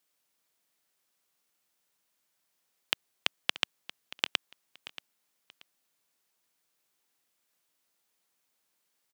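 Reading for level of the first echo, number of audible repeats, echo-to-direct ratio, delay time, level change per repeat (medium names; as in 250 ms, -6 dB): -16.0 dB, 2, -16.0 dB, 631 ms, -12.0 dB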